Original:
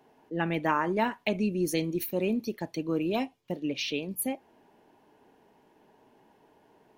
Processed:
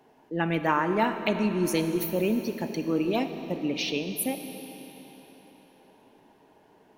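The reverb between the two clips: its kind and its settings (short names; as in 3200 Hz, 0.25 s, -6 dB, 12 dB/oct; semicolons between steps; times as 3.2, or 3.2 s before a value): digital reverb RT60 4.1 s, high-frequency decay 0.95×, pre-delay 5 ms, DRR 7.5 dB; gain +2 dB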